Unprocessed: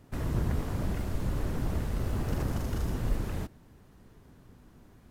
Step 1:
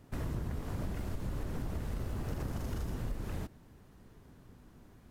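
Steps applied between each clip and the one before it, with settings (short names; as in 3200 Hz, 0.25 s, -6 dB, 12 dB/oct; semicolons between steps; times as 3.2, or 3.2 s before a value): compressor, threshold -31 dBFS, peak gain reduction 9 dB; gain -1.5 dB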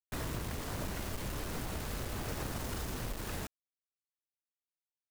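low shelf 390 Hz -9.5 dB; bit-crush 8-bit; gain +5.5 dB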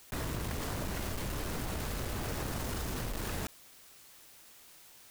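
fast leveller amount 70%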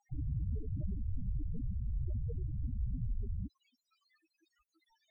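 limiter -33.5 dBFS, peak gain reduction 9.5 dB; loudest bins only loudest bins 4; air absorption 230 m; gain +10 dB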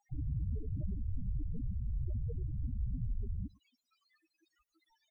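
outdoor echo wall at 19 m, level -24 dB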